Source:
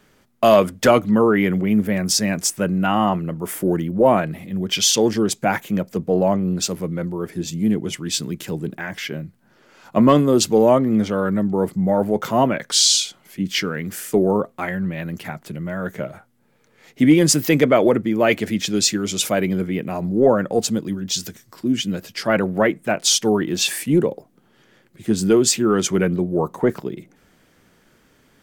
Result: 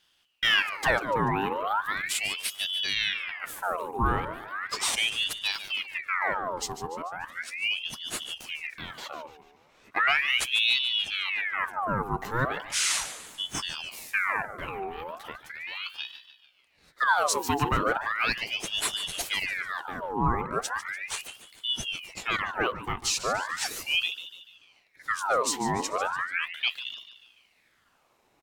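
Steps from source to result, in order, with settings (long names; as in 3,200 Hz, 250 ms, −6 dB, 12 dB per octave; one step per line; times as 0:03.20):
0:17.07–0:17.85: bit-depth reduction 12 bits, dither none
repeating echo 146 ms, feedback 49%, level −12.5 dB
ring modulator whose carrier an LFO sweeps 1,900 Hz, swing 70%, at 0.37 Hz
level −8 dB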